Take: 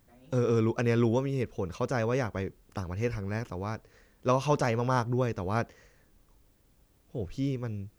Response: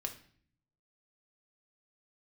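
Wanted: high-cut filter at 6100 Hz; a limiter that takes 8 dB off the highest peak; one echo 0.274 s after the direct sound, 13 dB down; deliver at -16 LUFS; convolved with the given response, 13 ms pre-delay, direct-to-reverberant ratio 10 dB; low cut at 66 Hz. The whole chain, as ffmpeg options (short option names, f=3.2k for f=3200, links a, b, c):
-filter_complex "[0:a]highpass=66,lowpass=6.1k,alimiter=limit=-20.5dB:level=0:latency=1,aecho=1:1:274:0.224,asplit=2[a][b];[1:a]atrim=start_sample=2205,adelay=13[c];[b][c]afir=irnorm=-1:irlink=0,volume=-9.5dB[d];[a][d]amix=inputs=2:normalize=0,volume=16dB"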